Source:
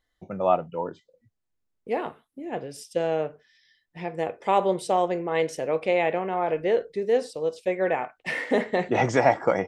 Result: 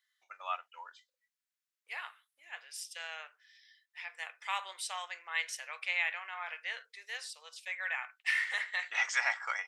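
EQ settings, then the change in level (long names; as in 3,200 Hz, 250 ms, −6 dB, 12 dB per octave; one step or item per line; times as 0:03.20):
high-pass filter 1,400 Hz 24 dB per octave
0.0 dB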